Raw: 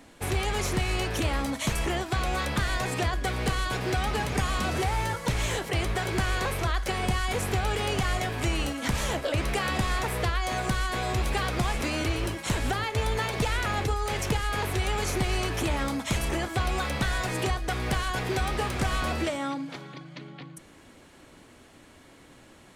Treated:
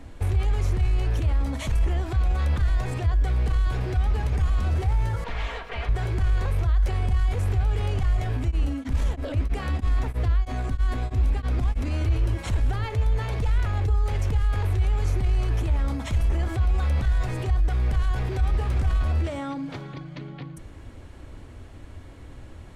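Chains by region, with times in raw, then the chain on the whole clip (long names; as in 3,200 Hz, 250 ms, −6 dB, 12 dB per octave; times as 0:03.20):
0:05.24–0:05.89: lower of the sound and its delayed copy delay 4.3 ms + three-way crossover with the lows and the highs turned down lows −16 dB, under 570 Hz, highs −21 dB, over 4,000 Hz
0:08.36–0:11.91: parametric band 260 Hz +14 dB 0.26 octaves + tremolo along a rectified sine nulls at 3.1 Hz
whole clip: spectral tilt −2 dB per octave; brickwall limiter −26 dBFS; low shelf with overshoot 120 Hz +8.5 dB, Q 1.5; level +2 dB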